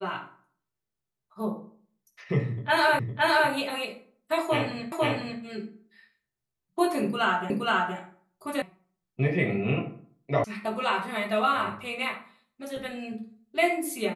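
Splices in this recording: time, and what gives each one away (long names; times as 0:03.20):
0:02.99: the same again, the last 0.51 s
0:04.92: the same again, the last 0.5 s
0:07.50: the same again, the last 0.47 s
0:08.62: cut off before it has died away
0:10.44: cut off before it has died away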